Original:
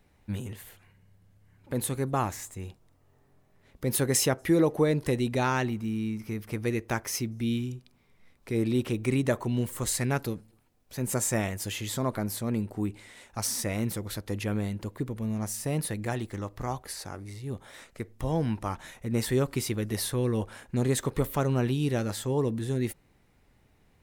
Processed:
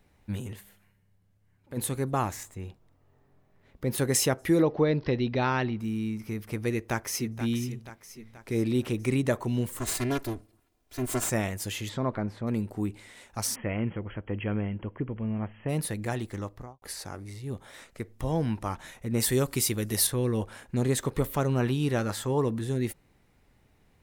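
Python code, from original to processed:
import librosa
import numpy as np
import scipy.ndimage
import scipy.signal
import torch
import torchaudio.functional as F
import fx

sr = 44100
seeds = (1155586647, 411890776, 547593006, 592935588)

y = fx.comb_fb(x, sr, f0_hz=200.0, decay_s=0.96, harmonics='all', damping=0.0, mix_pct=60, at=(0.59, 1.76), fade=0.02)
y = fx.peak_eq(y, sr, hz=9900.0, db=-8.0, octaves=2.0, at=(2.43, 3.98))
y = fx.steep_lowpass(y, sr, hz=5400.0, slope=72, at=(4.62, 5.8))
y = fx.echo_throw(y, sr, start_s=6.71, length_s=0.7, ms=480, feedback_pct=55, wet_db=-11.0)
y = fx.lower_of_two(y, sr, delay_ms=2.9, at=(9.79, 11.3))
y = fx.lowpass(y, sr, hz=fx.line((11.88, 3500.0), (12.46, 1900.0)), slope=12, at=(11.88, 12.46), fade=0.02)
y = fx.brickwall_lowpass(y, sr, high_hz=3300.0, at=(13.54, 15.68), fade=0.02)
y = fx.studio_fade_out(y, sr, start_s=16.41, length_s=0.41)
y = fx.high_shelf(y, sr, hz=4900.0, db=11.0, at=(19.2, 20.07))
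y = fx.peak_eq(y, sr, hz=1200.0, db=6.0, octaves=1.3, at=(21.6, 22.61))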